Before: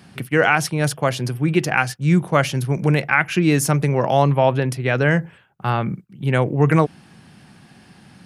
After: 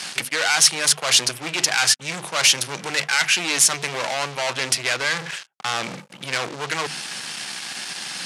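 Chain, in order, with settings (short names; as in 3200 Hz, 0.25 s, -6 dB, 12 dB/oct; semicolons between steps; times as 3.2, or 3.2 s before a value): HPF 110 Hz 24 dB/oct; reverse; compressor 10:1, threshold -26 dBFS, peak gain reduction 15.5 dB; reverse; notches 50/100/150/200/250 Hz; sample leveller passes 5; weighting filter ITU-R 468; gain -3.5 dB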